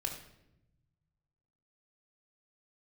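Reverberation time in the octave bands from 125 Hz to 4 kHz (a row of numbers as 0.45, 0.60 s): 2.2, 1.5, 1.0, 0.75, 0.75, 0.65 s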